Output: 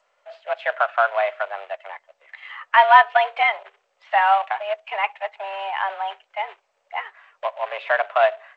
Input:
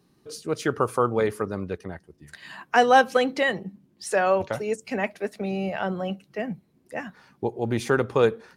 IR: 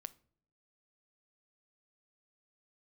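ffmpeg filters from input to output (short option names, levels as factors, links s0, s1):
-af "acrusher=bits=3:mode=log:mix=0:aa=0.000001,highpass=f=460:t=q:w=0.5412,highpass=f=460:t=q:w=1.307,lowpass=f=2900:t=q:w=0.5176,lowpass=f=2900:t=q:w=0.7071,lowpass=f=2900:t=q:w=1.932,afreqshift=200,volume=1.78" -ar 16000 -c:a g722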